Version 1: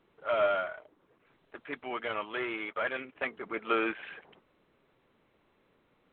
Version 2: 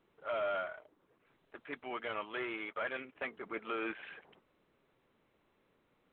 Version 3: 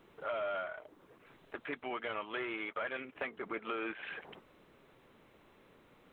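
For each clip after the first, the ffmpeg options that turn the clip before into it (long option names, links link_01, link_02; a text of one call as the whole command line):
ffmpeg -i in.wav -af "alimiter=limit=-23.5dB:level=0:latency=1:release=13,volume=-4.5dB" out.wav
ffmpeg -i in.wav -af "acompressor=threshold=-52dB:ratio=2.5,volume=11dB" out.wav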